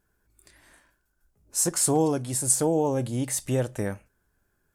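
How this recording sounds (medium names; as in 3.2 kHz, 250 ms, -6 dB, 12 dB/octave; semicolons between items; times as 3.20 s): noise floor -73 dBFS; spectral tilt -4.5 dB/octave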